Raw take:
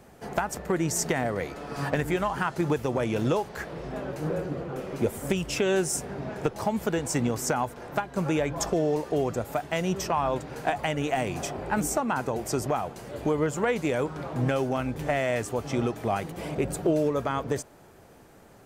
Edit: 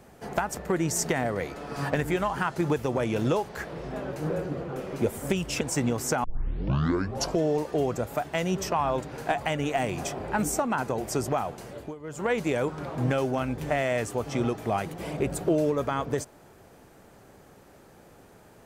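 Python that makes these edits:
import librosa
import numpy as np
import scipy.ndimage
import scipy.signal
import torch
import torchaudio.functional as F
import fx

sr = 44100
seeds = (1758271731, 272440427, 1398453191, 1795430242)

y = fx.edit(x, sr, fx.cut(start_s=5.61, length_s=1.38),
    fx.tape_start(start_s=7.62, length_s=1.17),
    fx.fade_down_up(start_s=13.03, length_s=0.68, db=-17.5, fade_s=0.3), tone=tone)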